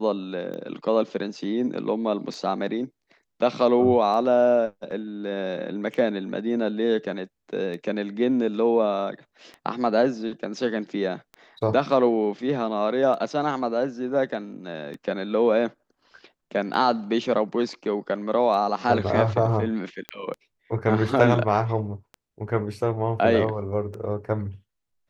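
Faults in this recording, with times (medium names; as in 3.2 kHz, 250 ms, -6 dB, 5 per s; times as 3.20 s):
tick 33 1/3 rpm -24 dBFS
20.09 s: pop -16 dBFS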